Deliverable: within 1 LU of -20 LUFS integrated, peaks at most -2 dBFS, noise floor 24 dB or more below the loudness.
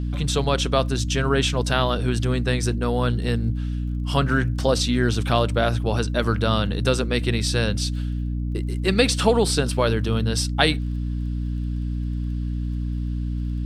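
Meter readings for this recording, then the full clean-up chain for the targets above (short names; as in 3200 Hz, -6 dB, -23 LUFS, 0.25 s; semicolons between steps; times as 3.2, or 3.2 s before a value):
ticks 22/s; hum 60 Hz; harmonics up to 300 Hz; hum level -23 dBFS; loudness -23.0 LUFS; peak -1.5 dBFS; loudness target -20.0 LUFS
-> de-click; de-hum 60 Hz, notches 5; gain +3 dB; limiter -2 dBFS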